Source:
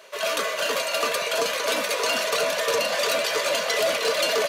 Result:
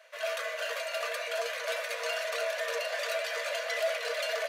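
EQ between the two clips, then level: rippled Chebyshev high-pass 460 Hz, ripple 9 dB; -5.0 dB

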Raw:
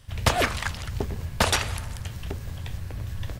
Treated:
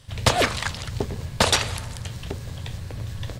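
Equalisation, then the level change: graphic EQ 125/250/500/1000/2000/4000/8000 Hz +7/+4/+7/+4/+3/+8/+7 dB; -4.0 dB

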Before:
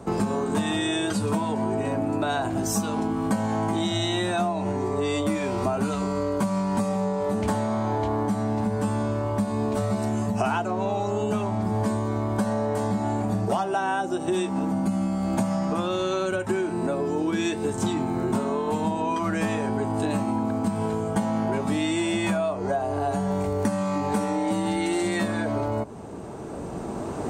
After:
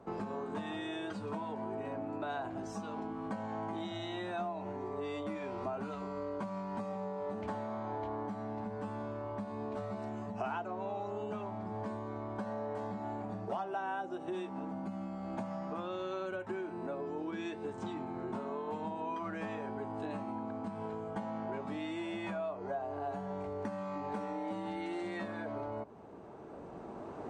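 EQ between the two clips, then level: tape spacing loss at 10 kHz 26 dB; low shelf 290 Hz -11.5 dB; -8.0 dB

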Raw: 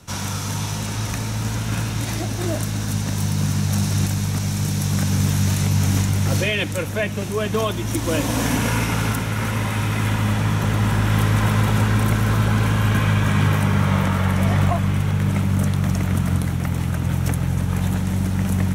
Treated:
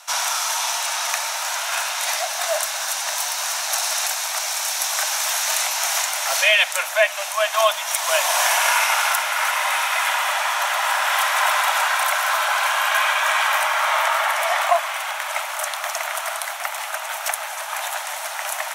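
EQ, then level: steep high-pass 610 Hz 96 dB/oct; +8.0 dB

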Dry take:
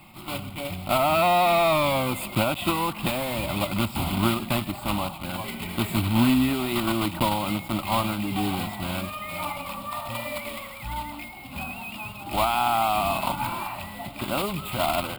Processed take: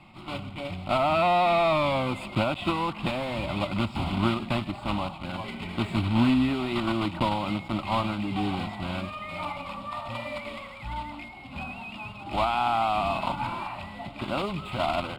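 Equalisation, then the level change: air absorption 110 m; -1.5 dB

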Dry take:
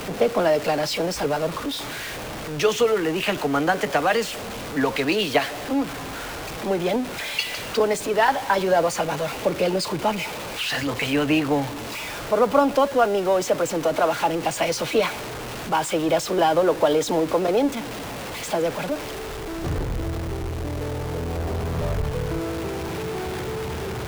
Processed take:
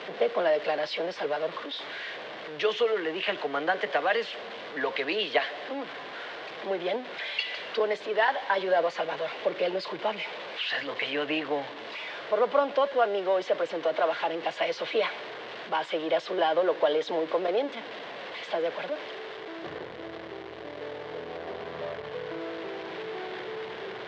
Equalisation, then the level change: speaker cabinet 270–3500 Hz, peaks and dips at 270 Hz -6 dB, 860 Hz -6 dB, 1300 Hz -7 dB, 2500 Hz -6 dB; low shelf 390 Hz -11.5 dB; 0.0 dB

